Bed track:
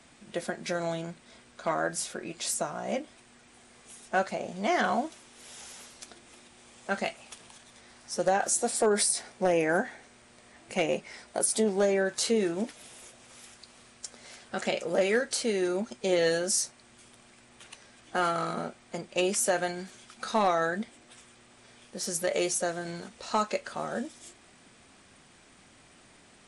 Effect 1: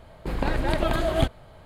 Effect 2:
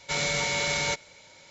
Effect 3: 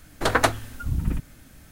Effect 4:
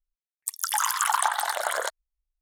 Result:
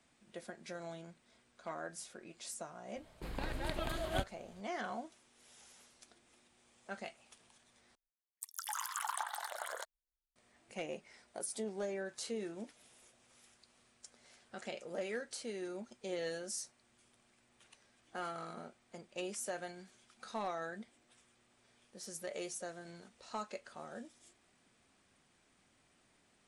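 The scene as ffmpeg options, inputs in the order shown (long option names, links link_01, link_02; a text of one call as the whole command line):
ffmpeg -i bed.wav -i cue0.wav -i cue1.wav -i cue2.wav -i cue3.wav -filter_complex "[0:a]volume=-14.5dB[link_01];[1:a]highshelf=frequency=2300:gain=8[link_02];[link_01]asplit=2[link_03][link_04];[link_03]atrim=end=7.954[link_05];[4:a]atrim=end=2.41,asetpts=PTS-STARTPTS,volume=-15.5dB[link_06];[link_04]atrim=start=10.356[link_07];[link_02]atrim=end=1.65,asetpts=PTS-STARTPTS,volume=-15.5dB,afade=type=in:duration=0.004:curve=hsin,afade=type=out:start_time=1.646:duration=0.004:curve=hsin,adelay=2960[link_08];[link_05][link_06]acrossfade=duration=0.004:curve1=hsin:curve2=hsin[link_09];[link_09][link_07]acrossfade=duration=0.004:curve1=hsin:curve2=hsin[link_10];[link_10][link_08]amix=inputs=2:normalize=0" out.wav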